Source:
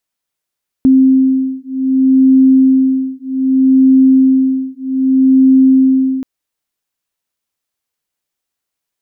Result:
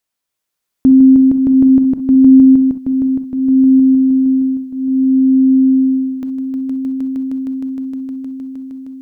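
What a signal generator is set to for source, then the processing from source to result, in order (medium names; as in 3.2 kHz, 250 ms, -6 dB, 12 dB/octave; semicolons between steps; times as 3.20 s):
beating tones 263 Hz, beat 0.64 Hz, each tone -10 dBFS 5.38 s
on a send: echo with a slow build-up 155 ms, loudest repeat 5, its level -3.5 dB; on the sum: gated-style reverb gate 80 ms rising, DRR 11 dB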